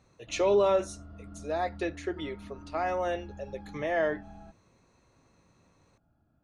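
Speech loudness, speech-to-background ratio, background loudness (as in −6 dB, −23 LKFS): −30.5 LKFS, 17.0 dB, −47.5 LKFS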